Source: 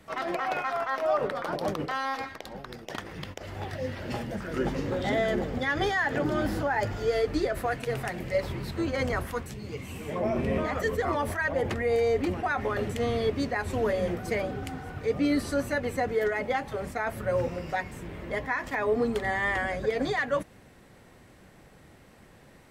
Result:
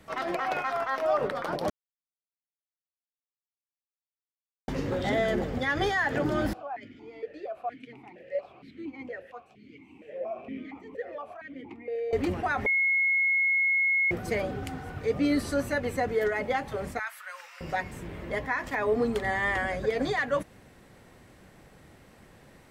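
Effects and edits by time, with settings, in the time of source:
1.70–4.68 s: mute
6.53–12.13 s: stepped vowel filter 4.3 Hz
12.66–14.11 s: bleep 2.17 kHz -21.5 dBFS
16.99–17.61 s: high-pass 1.2 kHz 24 dB/octave

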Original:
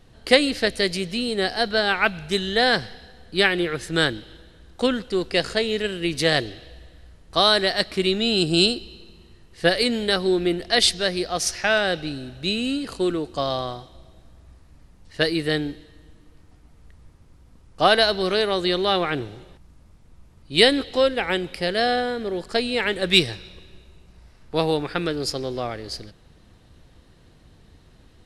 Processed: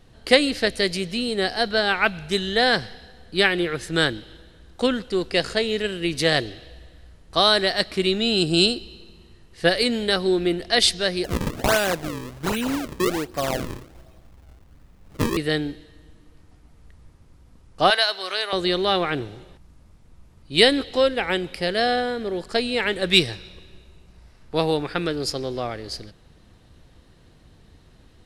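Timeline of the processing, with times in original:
11.24–15.37 s: decimation with a swept rate 35×, swing 160% 1.3 Hz
17.90–18.53 s: high-pass 870 Hz

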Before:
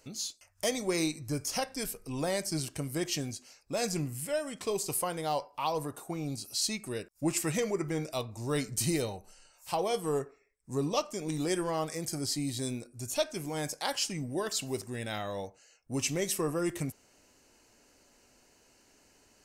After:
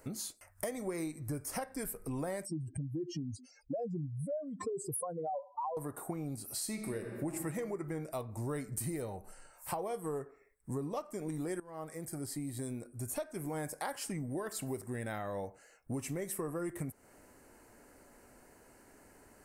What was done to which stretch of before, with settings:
2.45–5.77 s: spectral contrast enhancement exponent 3.2
6.49–7.32 s: reverb throw, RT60 1.6 s, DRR 5 dB
11.60–13.88 s: fade in, from -19.5 dB
whole clip: high-order bell 4.2 kHz -13.5 dB; compression 6:1, threshold -42 dBFS; trim +6 dB

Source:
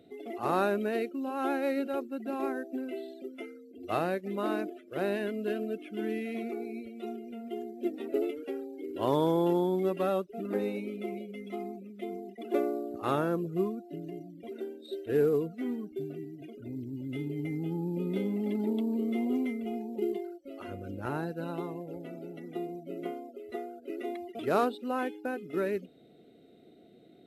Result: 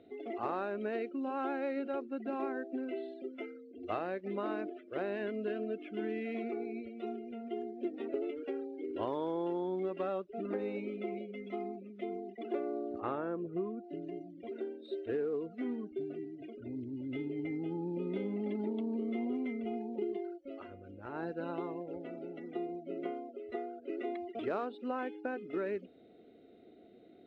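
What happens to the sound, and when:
13.00–13.84 s: distance through air 330 m
20.54–21.27 s: dip -9 dB, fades 0.15 s
whole clip: low-pass 2.9 kHz 12 dB/octave; peaking EQ 150 Hz -10.5 dB 0.63 oct; compression 6:1, threshold -32 dBFS

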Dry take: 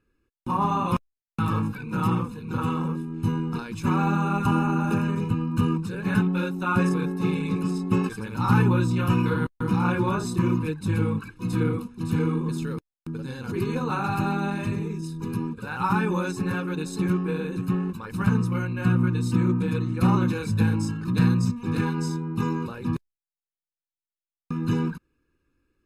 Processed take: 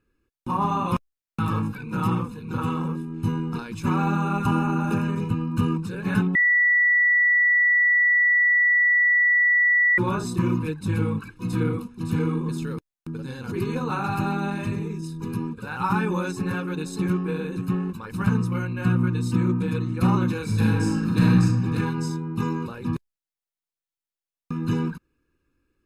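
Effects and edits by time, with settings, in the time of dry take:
6.35–9.98 s: bleep 1.95 kHz -15.5 dBFS
20.44–21.44 s: reverb throw, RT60 1.2 s, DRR -2 dB

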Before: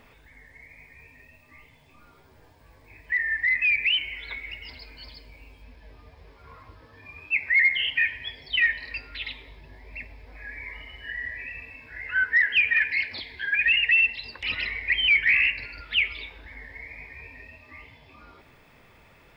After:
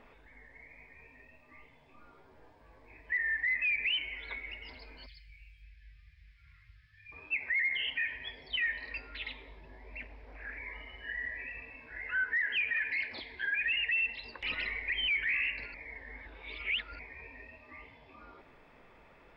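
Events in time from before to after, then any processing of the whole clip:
5.06–7.12 s: elliptic band-stop 130–1900 Hz
9.99–10.58 s: loudspeaker Doppler distortion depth 0.31 ms
15.74–16.99 s: reverse
whole clip: low-pass 1.4 kHz 6 dB/octave; peaking EQ 99 Hz -10.5 dB 1.8 oct; peak limiter -25 dBFS

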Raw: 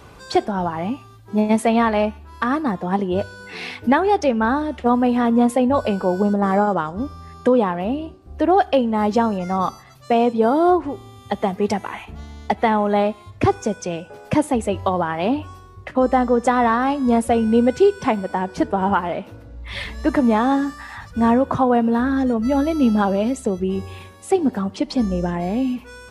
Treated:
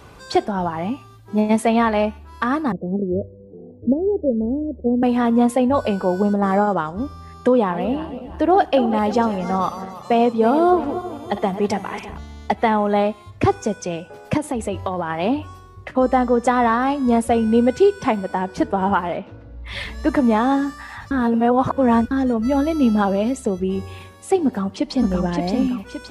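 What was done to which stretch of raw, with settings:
2.72–5.03 s: steep low-pass 570 Hz 48 dB/octave
7.53–12.18 s: backward echo that repeats 166 ms, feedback 64%, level -12 dB
14.37–15.10 s: compression, threshold -18 dBFS
19.17–19.66 s: distance through air 150 m
21.11–22.11 s: reverse
24.45–25.10 s: echo throw 570 ms, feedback 45%, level -3 dB

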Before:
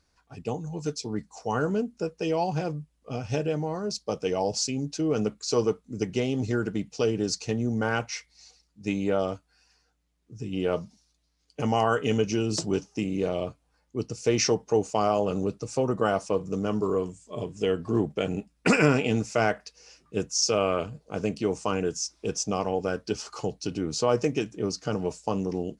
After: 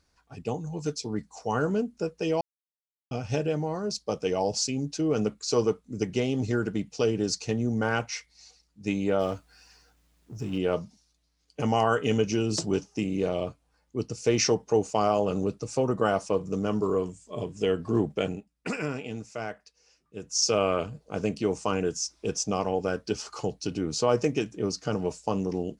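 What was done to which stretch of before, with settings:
2.41–3.11 s: mute
9.20–10.58 s: companding laws mixed up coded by mu
18.25–20.38 s: dip -11 dB, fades 0.16 s

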